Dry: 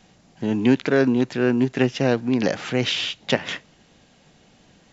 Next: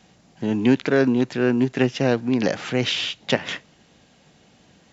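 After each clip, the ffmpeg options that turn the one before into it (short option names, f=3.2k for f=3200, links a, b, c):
-af "highpass=48"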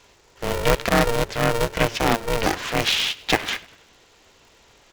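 -filter_complex "[0:a]lowshelf=f=330:g=-9.5,asplit=5[a][b][c][d][e];[b]adelay=98,afreqshift=-42,volume=-21dB[f];[c]adelay=196,afreqshift=-84,volume=-27.2dB[g];[d]adelay=294,afreqshift=-126,volume=-33.4dB[h];[e]adelay=392,afreqshift=-168,volume=-39.6dB[i];[a][f][g][h][i]amix=inputs=5:normalize=0,aeval=exprs='val(0)*sgn(sin(2*PI*230*n/s))':c=same,volume=3.5dB"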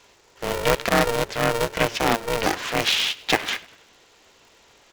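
-af "lowshelf=f=140:g=-8"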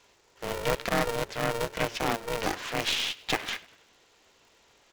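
-af "aeval=exprs='(tanh(3.55*val(0)+0.55)-tanh(0.55))/3.55':c=same,volume=-4.5dB"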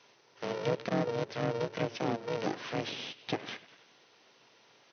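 -filter_complex "[0:a]afftfilt=real='re*between(b*sr/4096,100,6300)':imag='im*between(b*sr/4096,100,6300)':win_size=4096:overlap=0.75,acrossover=split=640[a][b];[b]acompressor=threshold=-39dB:ratio=6[c];[a][c]amix=inputs=2:normalize=0"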